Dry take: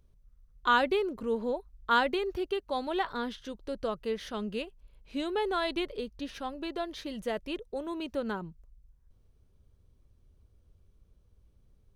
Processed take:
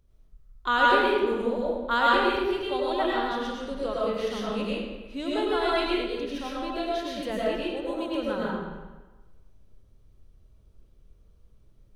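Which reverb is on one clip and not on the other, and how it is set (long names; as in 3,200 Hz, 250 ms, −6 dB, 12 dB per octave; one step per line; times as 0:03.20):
comb and all-pass reverb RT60 1.2 s, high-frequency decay 0.8×, pre-delay 65 ms, DRR −6 dB
level −1 dB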